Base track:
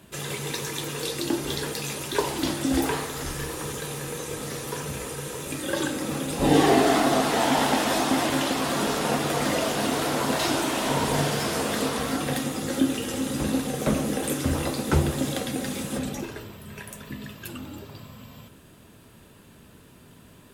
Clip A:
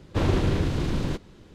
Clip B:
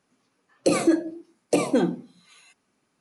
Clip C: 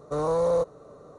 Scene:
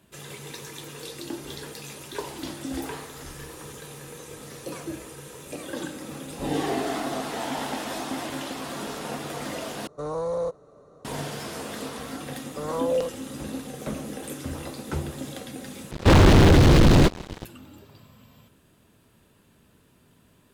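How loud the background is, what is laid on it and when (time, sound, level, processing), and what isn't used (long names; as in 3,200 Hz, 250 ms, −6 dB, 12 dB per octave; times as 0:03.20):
base track −8.5 dB
0:04.00: mix in B −16.5 dB
0:09.87: overwrite with C −4.5 dB
0:12.45: mix in C −6.5 dB + auto-filter low-pass saw down 1.8 Hz 440–5,100 Hz
0:15.91: overwrite with A −0.5 dB + leveller curve on the samples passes 5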